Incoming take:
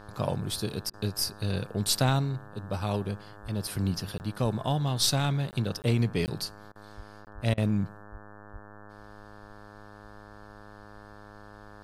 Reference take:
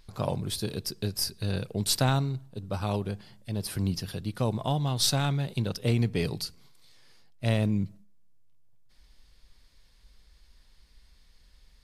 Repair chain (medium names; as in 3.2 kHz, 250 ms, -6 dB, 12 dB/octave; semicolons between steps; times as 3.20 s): de-hum 103.8 Hz, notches 17; de-plosive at 3.42/4.42/6.96/7.34/8.11/8.52 s; interpolate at 4.18/5.51/5.82/6.26/7.25 s, 19 ms; interpolate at 0.90/6.72/7.54 s, 34 ms